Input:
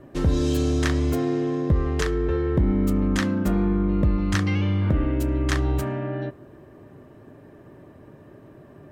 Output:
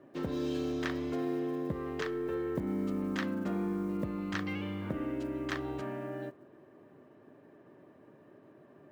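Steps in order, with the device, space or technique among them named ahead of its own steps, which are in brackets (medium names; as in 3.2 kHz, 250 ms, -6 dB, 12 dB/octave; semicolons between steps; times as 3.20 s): early digital voice recorder (band-pass 200–4000 Hz; block-companded coder 7-bit); trim -8.5 dB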